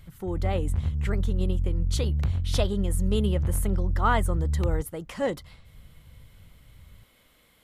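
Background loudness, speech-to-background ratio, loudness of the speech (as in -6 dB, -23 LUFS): -28.5 LUFS, -2.5 dB, -31.0 LUFS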